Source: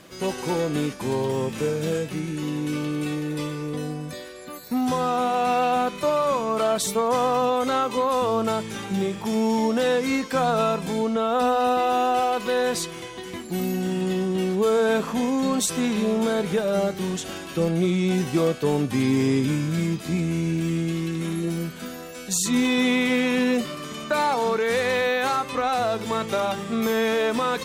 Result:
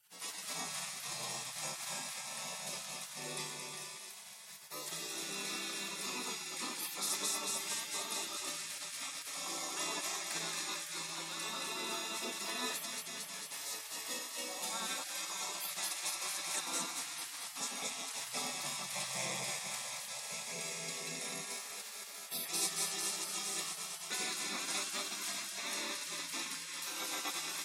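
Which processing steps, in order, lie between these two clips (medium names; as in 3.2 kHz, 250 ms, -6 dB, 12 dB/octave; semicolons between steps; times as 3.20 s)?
high-pass 230 Hz 24 dB/octave; high-order bell 7 kHz +9.5 dB; comb of notches 1.5 kHz; echo whose repeats swap between lows and highs 112 ms, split 850 Hz, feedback 87%, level -5 dB; spectral gate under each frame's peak -20 dB weak; 14.19–16.67 s: bass shelf 320 Hz -8 dB; trim -7 dB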